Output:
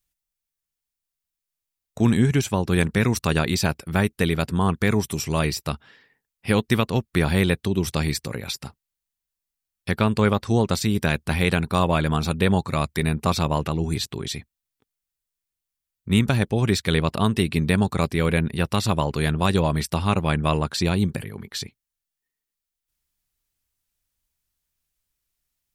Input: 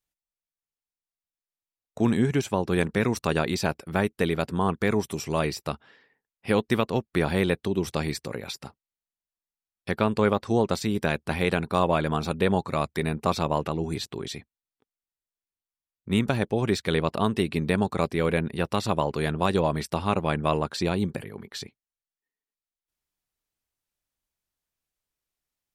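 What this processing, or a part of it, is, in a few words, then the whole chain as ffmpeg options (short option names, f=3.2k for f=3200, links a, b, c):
smiley-face EQ: -af "lowshelf=f=120:g=6.5,equalizer=f=530:t=o:w=2.6:g=-6,highshelf=f=8.7k:g=5,volume=5.5dB"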